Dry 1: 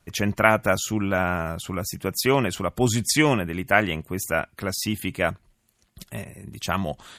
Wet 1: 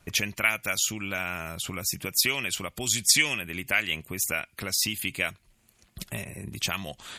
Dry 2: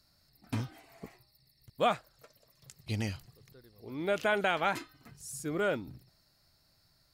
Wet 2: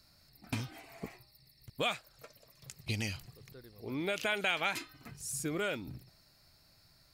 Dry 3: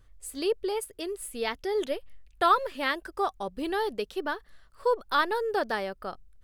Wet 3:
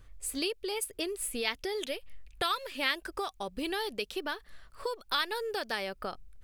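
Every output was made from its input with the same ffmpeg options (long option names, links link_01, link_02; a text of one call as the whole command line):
ffmpeg -i in.wav -filter_complex "[0:a]equalizer=frequency=2400:width_type=o:width=0.28:gain=4.5,acrossover=split=2300[link_01][link_02];[link_01]acompressor=threshold=-37dB:ratio=10[link_03];[link_03][link_02]amix=inputs=2:normalize=0,volume=4dB" out.wav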